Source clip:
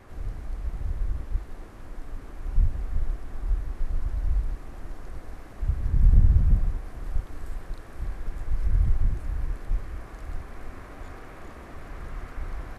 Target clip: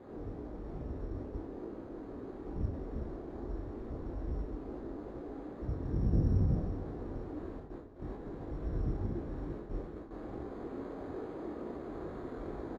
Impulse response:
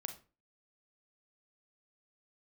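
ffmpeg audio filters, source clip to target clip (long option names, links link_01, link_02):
-filter_complex "[0:a]asettb=1/sr,asplit=3[link_01][link_02][link_03];[link_01]atrim=end=7.604[link_04];[link_02]atrim=start=7.6:end=10.11,asetpts=PTS-STARTPTS,afade=type=in:duration=0.004:curve=qsin,afade=type=out:start_time=2.506:duration=0.004:curve=qsin,agate=range=-33dB:threshold=-29dB:ratio=3:detection=peak[link_05];[link_03]atrim=start=10.106[link_06];[link_04][link_05]acrossfade=duration=0.004:curve1=hsin:curve2=qsin[link_07];[link_07][link_06]acrossfade=duration=0.004:curve1=qsin:curve2=hsin,flanger=delay=16.5:depth=7:speed=2.3,acrusher=samples=8:mix=1:aa=0.000001,bandpass=frequency=360:width_type=q:width=1.7:csg=0,aecho=1:1:373|746|1119|1492|1865:0.141|0.0735|0.0382|0.0199|0.0103[link_08];[1:a]atrim=start_sample=2205,asetrate=57330,aresample=44100[link_09];[link_08][link_09]afir=irnorm=-1:irlink=0,volume=16.5dB"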